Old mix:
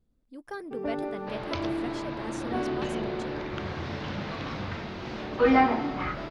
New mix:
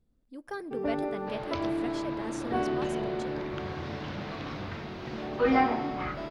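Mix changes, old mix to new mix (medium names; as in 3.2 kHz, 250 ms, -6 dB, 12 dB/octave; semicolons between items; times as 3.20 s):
second sound -4.0 dB; reverb: on, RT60 1.5 s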